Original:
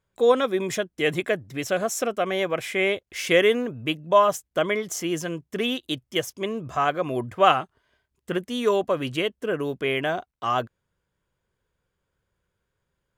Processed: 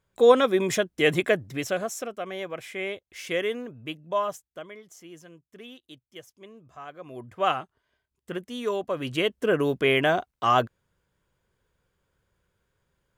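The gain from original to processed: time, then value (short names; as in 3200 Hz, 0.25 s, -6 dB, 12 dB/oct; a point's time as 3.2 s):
1.44 s +2 dB
2.1 s -9 dB
4.28 s -9 dB
4.7 s -19 dB
6.87 s -19 dB
7.47 s -6.5 dB
8.85 s -6.5 dB
9.39 s +3.5 dB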